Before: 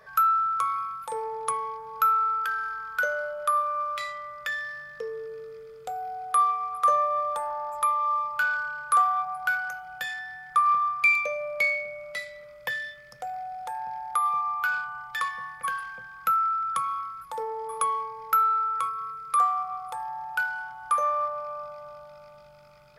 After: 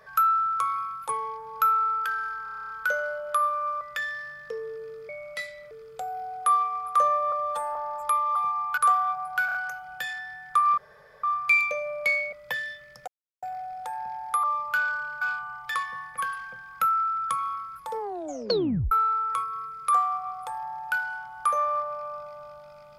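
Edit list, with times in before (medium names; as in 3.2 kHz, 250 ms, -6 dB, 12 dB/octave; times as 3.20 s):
1.09–1.49 s: delete
2.83 s: stutter 0.03 s, 10 plays
3.94–4.31 s: delete
7.20–7.49 s: stretch 1.5×
8.09–8.87 s: swap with 14.25–14.67 s
9.55 s: stutter 0.03 s, 4 plays
10.78 s: insert room tone 0.46 s
11.87–12.49 s: move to 5.59 s
13.24 s: insert silence 0.35 s
17.44 s: tape stop 0.93 s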